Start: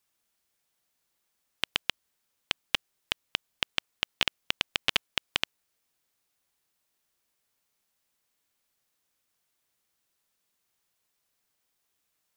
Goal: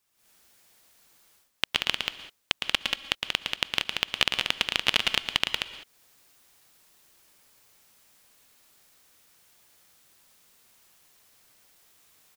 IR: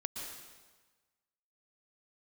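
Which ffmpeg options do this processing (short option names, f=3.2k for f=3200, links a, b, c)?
-filter_complex "[0:a]aecho=1:1:110.8|183.7:0.501|0.562,asplit=2[a][b];[1:a]atrim=start_sample=2205,afade=t=out:st=0.26:d=0.01,atrim=end_sample=11907[c];[b][c]afir=irnorm=-1:irlink=0,volume=-7dB[d];[a][d]amix=inputs=2:normalize=0,dynaudnorm=f=150:g=3:m=13.5dB,volume=-1dB"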